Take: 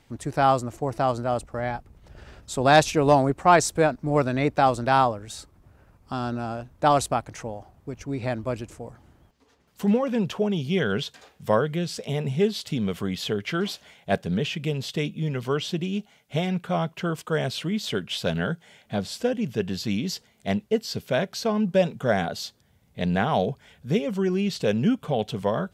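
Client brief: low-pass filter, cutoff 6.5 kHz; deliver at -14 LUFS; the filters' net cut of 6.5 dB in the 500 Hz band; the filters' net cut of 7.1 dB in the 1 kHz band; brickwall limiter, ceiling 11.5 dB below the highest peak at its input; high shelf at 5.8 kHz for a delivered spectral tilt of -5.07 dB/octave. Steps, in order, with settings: low-pass 6.5 kHz; peaking EQ 500 Hz -6 dB; peaking EQ 1 kHz -7.5 dB; treble shelf 5.8 kHz +3.5 dB; trim +16.5 dB; peak limiter -2.5 dBFS

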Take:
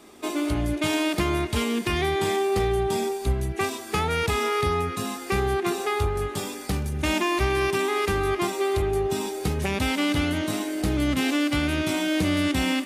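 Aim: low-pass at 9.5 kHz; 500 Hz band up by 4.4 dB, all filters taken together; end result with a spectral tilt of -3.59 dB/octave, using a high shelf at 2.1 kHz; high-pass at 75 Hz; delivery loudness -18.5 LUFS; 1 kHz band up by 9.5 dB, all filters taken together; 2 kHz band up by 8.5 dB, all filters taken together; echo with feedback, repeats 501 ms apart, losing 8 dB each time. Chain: high-pass 75 Hz; low-pass 9.5 kHz; peaking EQ 500 Hz +4 dB; peaking EQ 1 kHz +8.5 dB; peaking EQ 2 kHz +3.5 dB; treble shelf 2.1 kHz +7.5 dB; feedback delay 501 ms, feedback 40%, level -8 dB; trim +0.5 dB

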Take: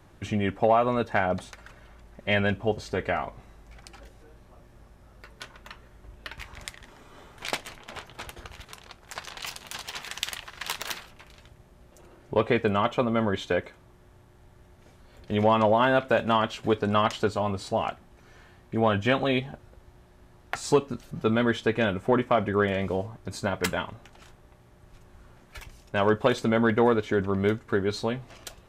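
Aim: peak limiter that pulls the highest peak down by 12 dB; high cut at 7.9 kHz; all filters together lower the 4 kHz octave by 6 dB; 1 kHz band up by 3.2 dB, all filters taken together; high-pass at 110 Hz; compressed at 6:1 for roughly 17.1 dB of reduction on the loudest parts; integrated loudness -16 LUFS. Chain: high-pass 110 Hz; low-pass 7.9 kHz; peaking EQ 1 kHz +4.5 dB; peaking EQ 4 kHz -8.5 dB; compression 6:1, threshold -34 dBFS; trim +26 dB; peak limiter -1.5 dBFS

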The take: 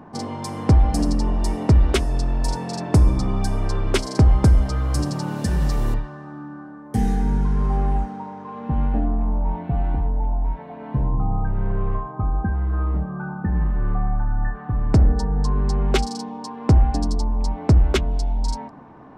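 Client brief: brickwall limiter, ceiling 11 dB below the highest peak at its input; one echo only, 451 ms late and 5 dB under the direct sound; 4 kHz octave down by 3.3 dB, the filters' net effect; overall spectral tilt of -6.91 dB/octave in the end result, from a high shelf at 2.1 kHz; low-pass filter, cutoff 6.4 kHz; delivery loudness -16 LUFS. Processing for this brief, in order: low-pass 6.4 kHz; treble shelf 2.1 kHz +5 dB; peaking EQ 4 kHz -9 dB; peak limiter -19 dBFS; delay 451 ms -5 dB; trim +11.5 dB

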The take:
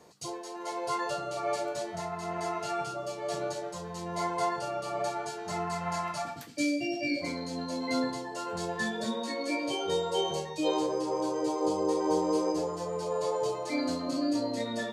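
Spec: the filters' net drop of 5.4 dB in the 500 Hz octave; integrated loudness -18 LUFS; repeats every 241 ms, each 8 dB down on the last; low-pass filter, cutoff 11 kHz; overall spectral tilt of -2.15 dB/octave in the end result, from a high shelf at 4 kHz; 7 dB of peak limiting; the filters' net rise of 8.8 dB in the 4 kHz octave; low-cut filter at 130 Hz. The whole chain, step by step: high-pass 130 Hz; low-pass 11 kHz; peaking EQ 500 Hz -7 dB; treble shelf 4 kHz +6.5 dB; peaking EQ 4 kHz +7 dB; peak limiter -22.5 dBFS; feedback delay 241 ms, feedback 40%, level -8 dB; trim +14 dB

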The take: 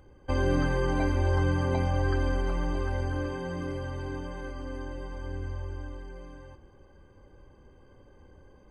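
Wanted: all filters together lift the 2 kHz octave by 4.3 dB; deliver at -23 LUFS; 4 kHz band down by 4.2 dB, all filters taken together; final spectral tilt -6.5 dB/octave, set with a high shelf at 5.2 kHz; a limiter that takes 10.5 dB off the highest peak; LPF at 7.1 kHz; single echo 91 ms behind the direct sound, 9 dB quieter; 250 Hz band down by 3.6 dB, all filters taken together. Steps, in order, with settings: low-pass 7.1 kHz; peaking EQ 250 Hz -5 dB; peaking EQ 2 kHz +8.5 dB; peaking EQ 4 kHz -6.5 dB; treble shelf 5.2 kHz -8 dB; peak limiter -25.5 dBFS; delay 91 ms -9 dB; trim +11.5 dB

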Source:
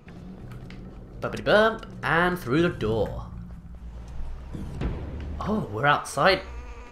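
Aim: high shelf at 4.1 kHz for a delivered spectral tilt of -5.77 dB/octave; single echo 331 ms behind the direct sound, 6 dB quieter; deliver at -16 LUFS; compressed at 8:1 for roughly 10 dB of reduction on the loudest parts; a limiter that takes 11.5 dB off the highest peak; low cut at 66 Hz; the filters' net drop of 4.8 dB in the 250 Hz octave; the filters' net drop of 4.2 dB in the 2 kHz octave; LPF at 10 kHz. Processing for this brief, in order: high-pass 66 Hz; low-pass 10 kHz; peaking EQ 250 Hz -7.5 dB; peaking EQ 2 kHz -4.5 dB; treble shelf 4.1 kHz -8 dB; compression 8:1, threshold -26 dBFS; peak limiter -28 dBFS; delay 331 ms -6 dB; trim +22.5 dB

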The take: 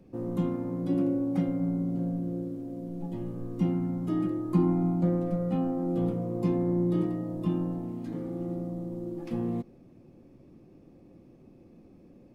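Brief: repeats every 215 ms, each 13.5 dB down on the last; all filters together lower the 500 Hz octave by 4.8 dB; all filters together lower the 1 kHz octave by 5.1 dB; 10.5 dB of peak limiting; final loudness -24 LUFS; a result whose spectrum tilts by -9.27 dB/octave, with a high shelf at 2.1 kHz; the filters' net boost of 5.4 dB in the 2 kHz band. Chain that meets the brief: peaking EQ 500 Hz -7 dB; peaking EQ 1 kHz -6.5 dB; peaking EQ 2 kHz +5 dB; treble shelf 2.1 kHz +6 dB; peak limiter -25.5 dBFS; feedback delay 215 ms, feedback 21%, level -13.5 dB; trim +10.5 dB

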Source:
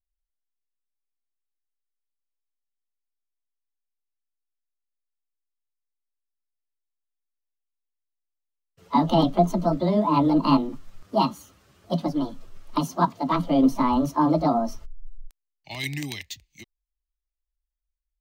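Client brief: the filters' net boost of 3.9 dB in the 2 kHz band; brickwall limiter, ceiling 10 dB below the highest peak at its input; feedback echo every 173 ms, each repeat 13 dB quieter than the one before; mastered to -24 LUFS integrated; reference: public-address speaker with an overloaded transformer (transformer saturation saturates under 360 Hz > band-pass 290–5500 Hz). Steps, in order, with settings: peaking EQ 2 kHz +4.5 dB; peak limiter -16.5 dBFS; feedback delay 173 ms, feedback 22%, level -13 dB; transformer saturation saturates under 360 Hz; band-pass 290–5500 Hz; trim +7.5 dB

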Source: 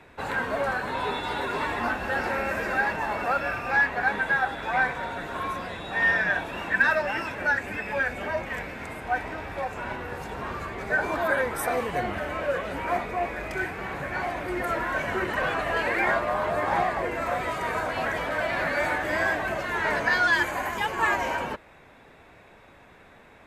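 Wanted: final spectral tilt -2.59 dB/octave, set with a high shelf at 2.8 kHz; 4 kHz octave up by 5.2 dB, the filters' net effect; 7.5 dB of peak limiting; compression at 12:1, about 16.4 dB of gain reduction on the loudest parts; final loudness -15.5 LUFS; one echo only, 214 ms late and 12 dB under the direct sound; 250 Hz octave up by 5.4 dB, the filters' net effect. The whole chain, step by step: peaking EQ 250 Hz +7 dB; treble shelf 2.8 kHz +3.5 dB; peaking EQ 4 kHz +4 dB; compression 12:1, threshold -32 dBFS; peak limiter -28.5 dBFS; delay 214 ms -12 dB; trim +21.5 dB

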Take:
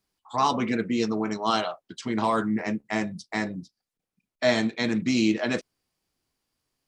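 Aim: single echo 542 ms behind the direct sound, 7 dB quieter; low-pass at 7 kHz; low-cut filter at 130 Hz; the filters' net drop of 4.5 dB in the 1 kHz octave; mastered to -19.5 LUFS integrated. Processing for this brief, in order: high-pass 130 Hz; low-pass 7 kHz; peaking EQ 1 kHz -5.5 dB; delay 542 ms -7 dB; trim +8.5 dB

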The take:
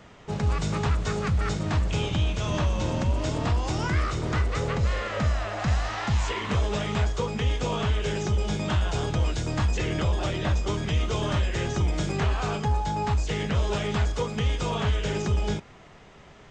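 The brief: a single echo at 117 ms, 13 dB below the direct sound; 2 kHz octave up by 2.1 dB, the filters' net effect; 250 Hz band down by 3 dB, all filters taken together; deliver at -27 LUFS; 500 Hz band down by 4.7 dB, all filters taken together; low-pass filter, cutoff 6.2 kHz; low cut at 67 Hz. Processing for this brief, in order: high-pass 67 Hz; low-pass 6.2 kHz; peaking EQ 250 Hz -3.5 dB; peaking EQ 500 Hz -5 dB; peaking EQ 2 kHz +3 dB; delay 117 ms -13 dB; trim +2 dB

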